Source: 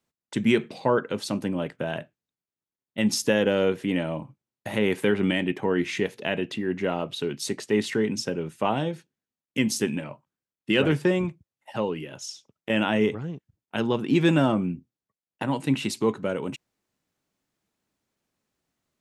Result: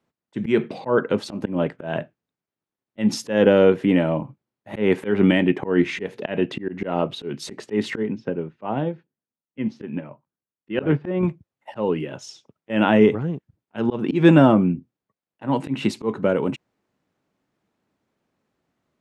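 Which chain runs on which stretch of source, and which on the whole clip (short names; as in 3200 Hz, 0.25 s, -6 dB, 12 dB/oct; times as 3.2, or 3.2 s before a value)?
8.03–11.23 HPF 47 Hz + air absorption 280 m + upward expander, over -36 dBFS
whole clip: LPF 1400 Hz 6 dB/oct; low shelf 61 Hz -11.5 dB; auto swell 0.158 s; gain +9 dB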